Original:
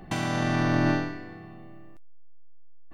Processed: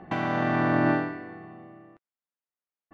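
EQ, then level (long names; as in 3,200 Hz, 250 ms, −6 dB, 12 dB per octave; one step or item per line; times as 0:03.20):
high-pass filter 280 Hz 6 dB per octave
low-pass filter 1,900 Hz 12 dB per octave
+4.0 dB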